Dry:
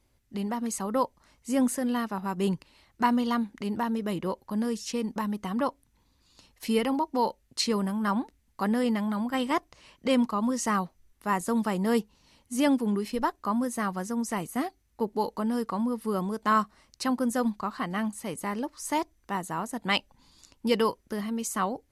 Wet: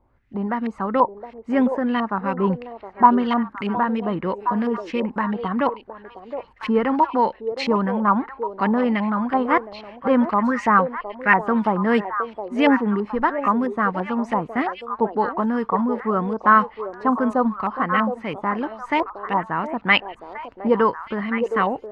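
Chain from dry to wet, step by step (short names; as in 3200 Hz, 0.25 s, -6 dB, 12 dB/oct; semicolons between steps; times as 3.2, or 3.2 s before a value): LFO low-pass saw up 3 Hz 830–2700 Hz; 10.31–11.41 band shelf 1900 Hz +10 dB 1 oct; delay with a stepping band-pass 0.715 s, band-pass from 510 Hz, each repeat 1.4 oct, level -5 dB; gain +5.5 dB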